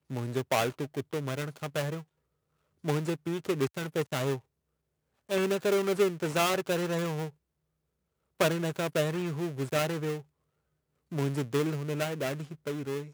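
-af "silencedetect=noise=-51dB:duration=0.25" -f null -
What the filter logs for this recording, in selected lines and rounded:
silence_start: 2.03
silence_end: 2.84 | silence_duration: 0.81
silence_start: 4.40
silence_end: 5.29 | silence_duration: 0.89
silence_start: 7.30
silence_end: 8.39 | silence_duration: 1.09
silence_start: 10.22
silence_end: 11.11 | silence_duration: 0.89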